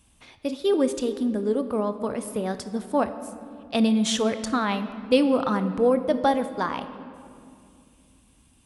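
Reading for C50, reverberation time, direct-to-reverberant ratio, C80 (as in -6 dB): 11.5 dB, 2.4 s, 10.0 dB, 12.5 dB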